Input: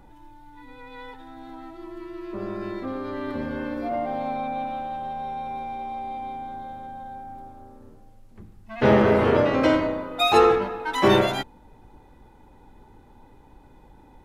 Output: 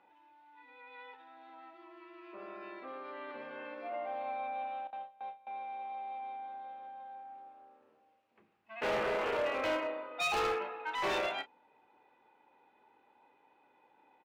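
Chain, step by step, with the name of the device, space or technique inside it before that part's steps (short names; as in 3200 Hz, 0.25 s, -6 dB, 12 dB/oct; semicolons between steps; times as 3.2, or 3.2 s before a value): 4.87–5.47 gate with hold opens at -24 dBFS; megaphone (BPF 550–3000 Hz; bell 2600 Hz +8.5 dB 0.42 oct; hard clip -20.5 dBFS, distortion -10 dB; doubler 32 ms -12.5 dB); gain -9 dB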